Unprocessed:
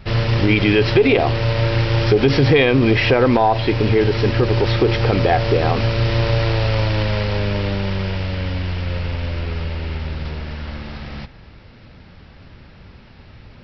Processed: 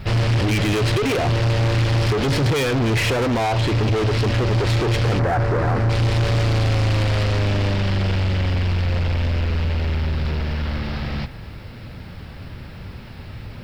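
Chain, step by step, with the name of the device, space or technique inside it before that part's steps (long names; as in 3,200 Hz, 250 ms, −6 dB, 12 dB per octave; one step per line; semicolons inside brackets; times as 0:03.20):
open-reel tape (soft clipping −24.5 dBFS, distortion −5 dB; parametric band 110 Hz +4 dB 1.08 octaves; white noise bed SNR 44 dB)
0:05.19–0:05.90: high shelf with overshoot 2,200 Hz −10 dB, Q 1.5
level +5.5 dB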